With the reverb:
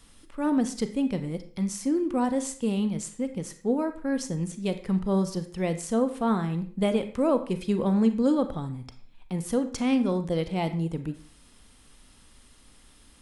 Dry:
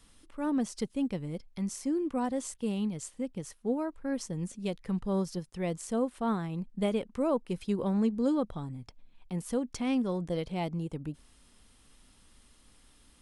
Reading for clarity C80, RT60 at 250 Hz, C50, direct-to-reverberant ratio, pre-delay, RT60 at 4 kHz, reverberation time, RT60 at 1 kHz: 14.5 dB, 0.45 s, 11.5 dB, 8.5 dB, 29 ms, 0.45 s, 0.45 s, 0.45 s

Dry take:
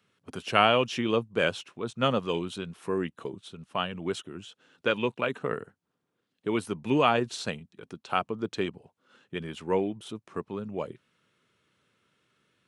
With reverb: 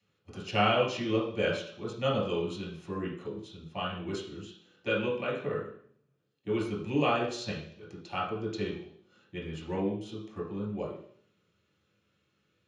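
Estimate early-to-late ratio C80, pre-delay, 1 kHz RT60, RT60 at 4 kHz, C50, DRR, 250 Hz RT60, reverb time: 8.5 dB, 3 ms, 0.55 s, 0.70 s, 4.0 dB, -5.0 dB, 0.70 s, 0.60 s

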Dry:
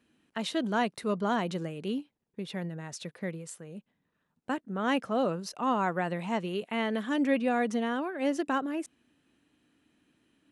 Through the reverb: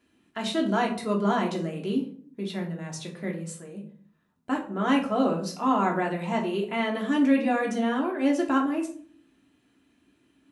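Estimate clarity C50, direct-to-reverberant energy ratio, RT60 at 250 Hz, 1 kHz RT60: 9.0 dB, -1.0 dB, 0.75 s, 0.45 s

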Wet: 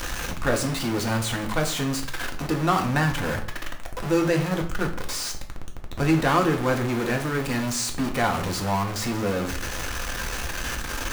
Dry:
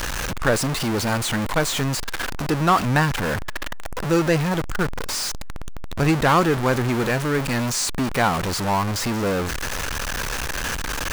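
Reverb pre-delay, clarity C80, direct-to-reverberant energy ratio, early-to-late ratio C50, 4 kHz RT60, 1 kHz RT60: 3 ms, 14.5 dB, 2.5 dB, 10.5 dB, 0.40 s, 0.45 s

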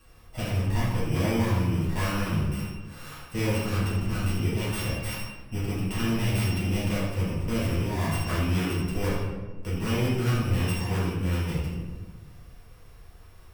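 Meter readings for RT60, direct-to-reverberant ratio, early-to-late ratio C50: 1.3 s, -10.5 dB, -0.5 dB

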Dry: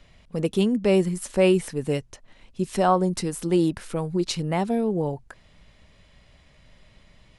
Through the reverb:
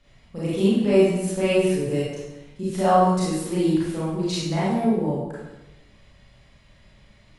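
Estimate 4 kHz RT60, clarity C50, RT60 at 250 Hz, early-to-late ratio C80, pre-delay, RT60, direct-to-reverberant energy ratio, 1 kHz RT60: 0.85 s, -2.0 dB, 1.2 s, 1.5 dB, 28 ms, 1.0 s, -9.0 dB, 0.95 s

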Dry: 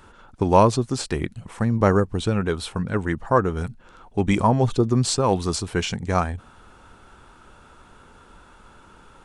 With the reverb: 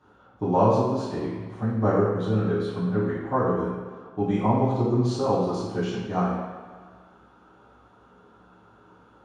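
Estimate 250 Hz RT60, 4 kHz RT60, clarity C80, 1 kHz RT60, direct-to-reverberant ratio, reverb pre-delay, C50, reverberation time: 1.6 s, 1.3 s, 2.5 dB, 1.7 s, -11.5 dB, 3 ms, 0.5 dB, 1.6 s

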